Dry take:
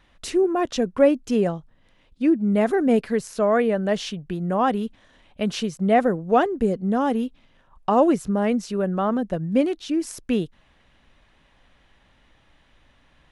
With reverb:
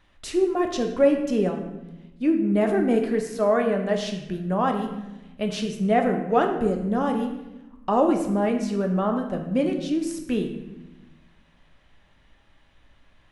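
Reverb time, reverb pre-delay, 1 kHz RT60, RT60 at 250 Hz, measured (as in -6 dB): 1.0 s, 3 ms, 0.95 s, 1.6 s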